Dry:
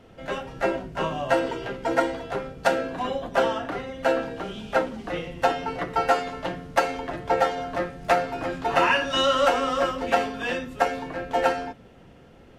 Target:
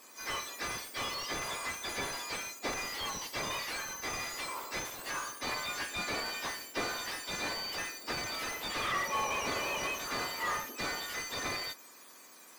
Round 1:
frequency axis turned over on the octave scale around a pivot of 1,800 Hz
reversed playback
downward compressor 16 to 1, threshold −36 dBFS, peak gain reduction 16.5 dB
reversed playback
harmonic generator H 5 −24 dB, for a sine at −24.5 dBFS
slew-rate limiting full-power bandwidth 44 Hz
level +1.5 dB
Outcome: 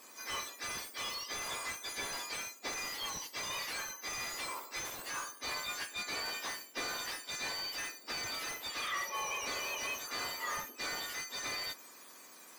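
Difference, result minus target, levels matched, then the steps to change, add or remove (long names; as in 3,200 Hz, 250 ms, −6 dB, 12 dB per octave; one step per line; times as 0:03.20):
downward compressor: peak gain reduction +9 dB
change: downward compressor 16 to 1, threshold −26.5 dBFS, peak gain reduction 7.5 dB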